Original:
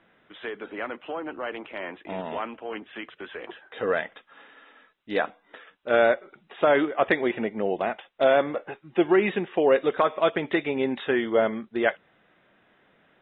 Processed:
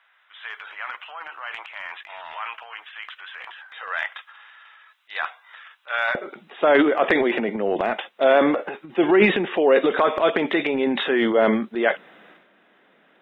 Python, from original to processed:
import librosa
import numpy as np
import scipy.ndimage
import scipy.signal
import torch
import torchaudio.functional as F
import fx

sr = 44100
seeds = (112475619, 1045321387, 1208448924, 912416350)

y = fx.highpass(x, sr, hz=fx.steps((0.0, 950.0), (6.15, 190.0)), slope=24)
y = fx.transient(y, sr, attack_db=-2, sustain_db=10)
y = F.gain(torch.from_numpy(y), 3.5).numpy()